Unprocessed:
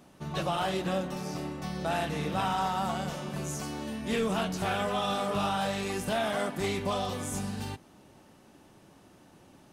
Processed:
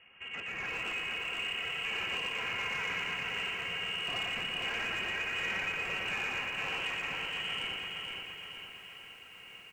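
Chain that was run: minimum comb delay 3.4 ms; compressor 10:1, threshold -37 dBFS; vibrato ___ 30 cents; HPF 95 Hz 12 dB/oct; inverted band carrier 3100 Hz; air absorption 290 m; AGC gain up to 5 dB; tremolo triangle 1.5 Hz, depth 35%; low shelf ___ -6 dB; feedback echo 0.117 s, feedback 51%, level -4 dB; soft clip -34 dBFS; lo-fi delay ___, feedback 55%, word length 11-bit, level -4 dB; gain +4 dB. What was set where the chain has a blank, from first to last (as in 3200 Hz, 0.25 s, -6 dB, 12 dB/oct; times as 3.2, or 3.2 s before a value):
15 Hz, 140 Hz, 0.466 s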